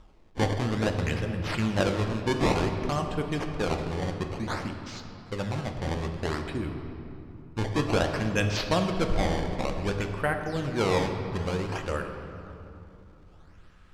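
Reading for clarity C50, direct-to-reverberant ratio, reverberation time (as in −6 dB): 6.0 dB, 4.0 dB, 3.0 s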